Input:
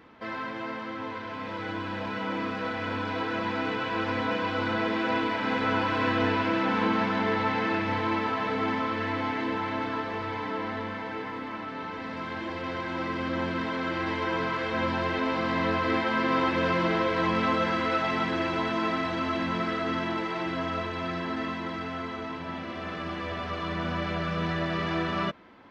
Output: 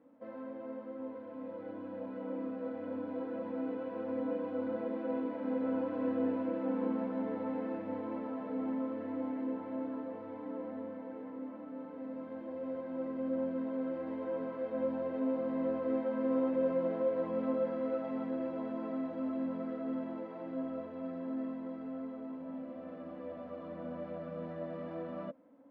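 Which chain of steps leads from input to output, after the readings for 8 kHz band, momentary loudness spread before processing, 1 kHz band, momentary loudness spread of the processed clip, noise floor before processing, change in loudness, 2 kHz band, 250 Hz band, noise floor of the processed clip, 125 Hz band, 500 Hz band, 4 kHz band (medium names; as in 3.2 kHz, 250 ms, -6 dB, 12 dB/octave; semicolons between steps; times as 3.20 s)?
no reading, 10 LU, -17.5 dB, 11 LU, -37 dBFS, -8.5 dB, -24.5 dB, -5.0 dB, -46 dBFS, -17.0 dB, -4.5 dB, under -30 dB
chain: two resonant band-passes 380 Hz, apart 0.93 oct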